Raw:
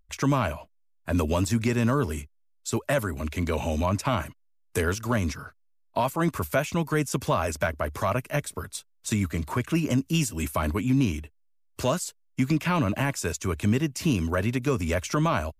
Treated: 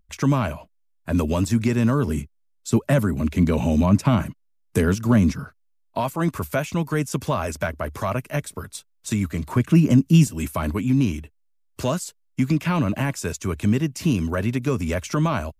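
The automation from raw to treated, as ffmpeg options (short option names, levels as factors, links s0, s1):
-af "asetnsamples=n=441:p=0,asendcmd='2.07 equalizer g 14;5.45 equalizer g 3.5;9.56 equalizer g 12;10.27 equalizer g 4.5',equalizer=f=180:t=o:w=1.7:g=6"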